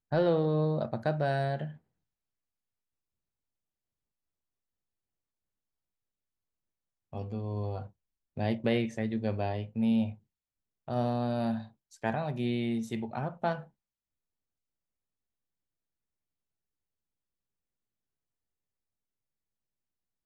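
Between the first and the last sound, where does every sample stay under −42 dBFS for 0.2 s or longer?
0:01.72–0:07.13
0:07.86–0:08.37
0:10.14–0:10.88
0:11.66–0:12.04

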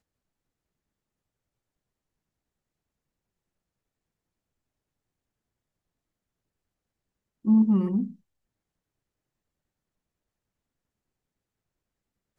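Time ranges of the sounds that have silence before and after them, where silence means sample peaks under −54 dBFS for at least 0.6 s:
0:07.45–0:08.16

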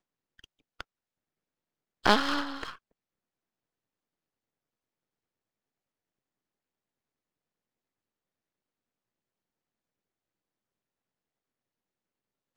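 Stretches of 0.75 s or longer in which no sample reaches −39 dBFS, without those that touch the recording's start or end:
0:00.81–0:02.04

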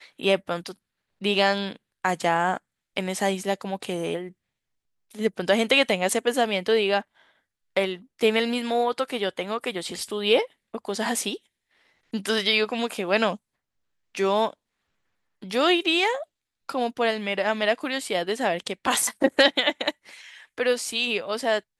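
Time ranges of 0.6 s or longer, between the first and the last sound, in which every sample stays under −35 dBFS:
0:04.28–0:05.15
0:07.01–0:07.76
0:11.36–0:12.14
0:13.36–0:14.15
0:14.50–0:15.42

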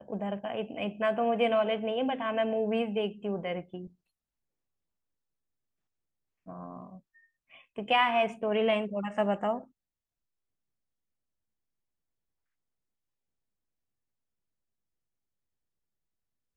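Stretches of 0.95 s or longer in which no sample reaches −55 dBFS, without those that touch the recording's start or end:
0:03.92–0:06.46

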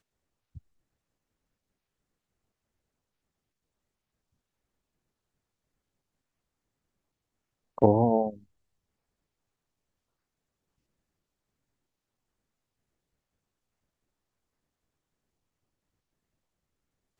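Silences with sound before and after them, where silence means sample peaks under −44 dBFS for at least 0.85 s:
0:00.58–0:07.78

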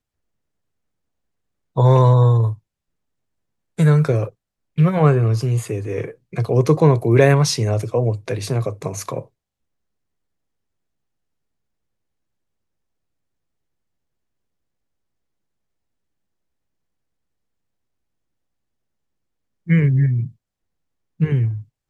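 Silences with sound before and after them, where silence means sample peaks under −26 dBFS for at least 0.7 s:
0:02.53–0:03.79
0:09.20–0:19.69
0:20.27–0:21.20

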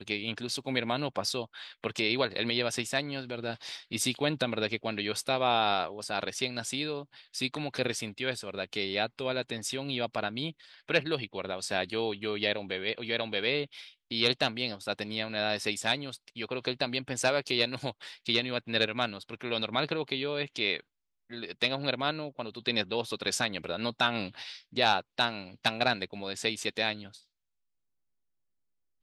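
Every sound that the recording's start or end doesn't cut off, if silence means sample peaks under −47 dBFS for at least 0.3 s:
0:21.30–0:27.20

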